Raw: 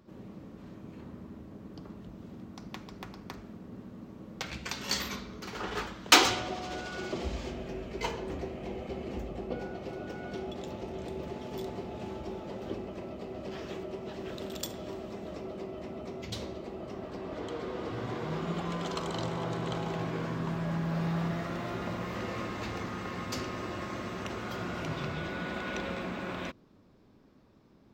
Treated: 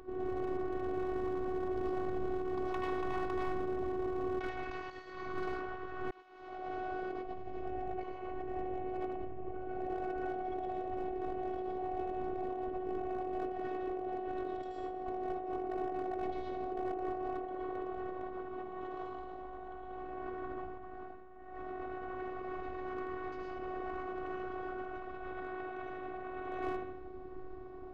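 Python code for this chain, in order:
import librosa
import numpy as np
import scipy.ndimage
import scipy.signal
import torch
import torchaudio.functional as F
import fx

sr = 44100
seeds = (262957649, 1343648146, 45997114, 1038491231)

y = fx.echo_feedback(x, sr, ms=78, feedback_pct=51, wet_db=-9.0)
y = fx.rev_freeverb(y, sr, rt60_s=0.47, hf_ratio=0.4, predelay_ms=70, drr_db=-3.0)
y = fx.over_compress(y, sr, threshold_db=-41.0, ratio=-1.0)
y = scipy.signal.sosfilt(scipy.signal.butter(2, 1300.0, 'lowpass', fs=sr, output='sos'), y)
y = np.clip(10.0 ** (32.5 / 20.0) * y, -1.0, 1.0) / 10.0 ** (32.5 / 20.0)
y = fx.robotise(y, sr, hz=370.0)
y = y * librosa.db_to_amplitude(4.5)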